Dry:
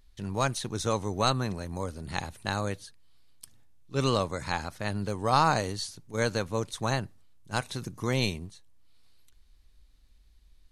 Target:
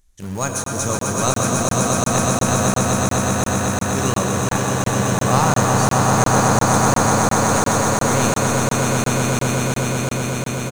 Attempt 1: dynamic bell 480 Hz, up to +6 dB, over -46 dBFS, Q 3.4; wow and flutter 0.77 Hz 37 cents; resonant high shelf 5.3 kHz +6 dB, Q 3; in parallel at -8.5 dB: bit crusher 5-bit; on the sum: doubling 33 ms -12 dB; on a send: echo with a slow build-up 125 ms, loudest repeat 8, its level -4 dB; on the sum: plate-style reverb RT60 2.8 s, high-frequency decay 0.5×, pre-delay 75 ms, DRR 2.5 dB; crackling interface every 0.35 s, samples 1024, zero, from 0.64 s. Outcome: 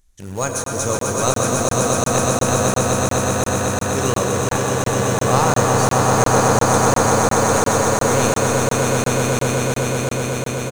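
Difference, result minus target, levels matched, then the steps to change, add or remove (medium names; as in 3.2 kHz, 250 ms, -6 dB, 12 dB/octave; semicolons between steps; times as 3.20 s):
500 Hz band +3.0 dB
change: dynamic bell 180 Hz, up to +6 dB, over -46 dBFS, Q 3.4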